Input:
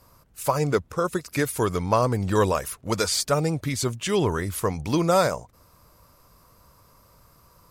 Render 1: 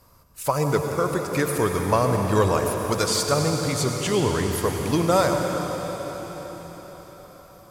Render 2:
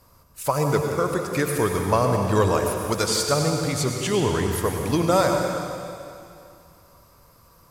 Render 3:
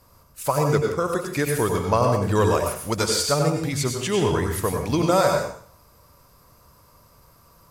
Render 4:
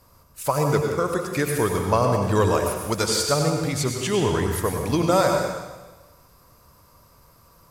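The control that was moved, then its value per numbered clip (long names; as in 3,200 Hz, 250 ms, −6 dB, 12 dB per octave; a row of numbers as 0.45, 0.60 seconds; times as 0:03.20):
dense smooth reverb, RT60: 5.3, 2.5, 0.52, 1.2 seconds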